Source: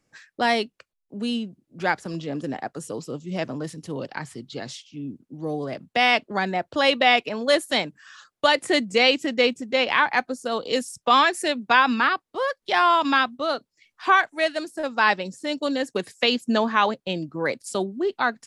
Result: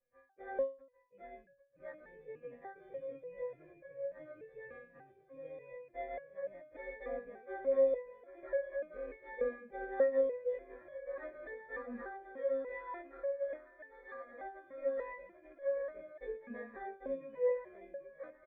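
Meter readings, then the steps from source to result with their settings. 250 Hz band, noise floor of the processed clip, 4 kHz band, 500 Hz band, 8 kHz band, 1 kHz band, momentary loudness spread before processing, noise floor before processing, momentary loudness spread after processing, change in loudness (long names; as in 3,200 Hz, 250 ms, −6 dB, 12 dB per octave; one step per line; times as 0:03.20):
−25.0 dB, −67 dBFS, below −40 dB, −10.5 dB, below −40 dB, −27.0 dB, 15 LU, −80 dBFS, 18 LU, −17.0 dB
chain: every partial snapped to a pitch grid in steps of 2 semitones
de-essing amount 40%
low shelf with overshoot 170 Hz +12 dB, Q 1.5
in parallel at −0.5 dB: downward compressor, threshold −27 dBFS, peak gain reduction 14.5 dB
on the sum: decimation without filtering 16×
formant resonators in series e
high-frequency loss of the air 310 metres
repeating echo 793 ms, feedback 46%, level −8 dB
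step-sequenced resonator 3.4 Hz 240–560 Hz
level +3.5 dB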